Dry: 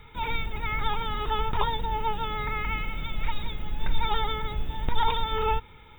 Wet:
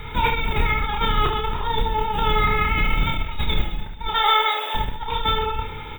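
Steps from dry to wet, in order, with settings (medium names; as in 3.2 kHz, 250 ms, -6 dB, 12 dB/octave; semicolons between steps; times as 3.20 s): 4.13–4.75 s: high-pass 540 Hz 24 dB/octave; compressor with a negative ratio -32 dBFS, ratio -1; reverse bouncing-ball echo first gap 30 ms, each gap 1.4×, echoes 5; trim +8.5 dB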